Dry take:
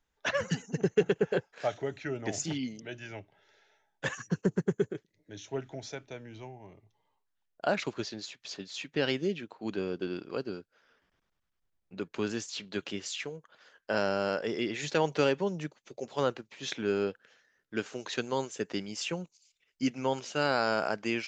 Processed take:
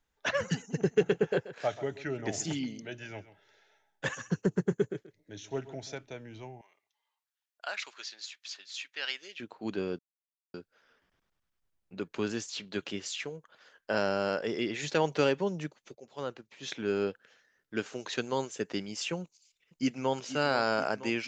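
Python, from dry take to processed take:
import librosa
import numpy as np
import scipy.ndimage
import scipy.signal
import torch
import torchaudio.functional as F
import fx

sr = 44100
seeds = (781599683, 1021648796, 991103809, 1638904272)

y = fx.echo_single(x, sr, ms=132, db=-15.5, at=(0.57, 5.98))
y = fx.highpass(y, sr, hz=1400.0, slope=12, at=(6.61, 9.4))
y = fx.echo_throw(y, sr, start_s=19.23, length_s=0.93, ms=480, feedback_pct=70, wet_db=-12.5)
y = fx.edit(y, sr, fx.silence(start_s=9.99, length_s=0.55),
    fx.fade_in_from(start_s=15.95, length_s=1.1, floor_db=-15.0), tone=tone)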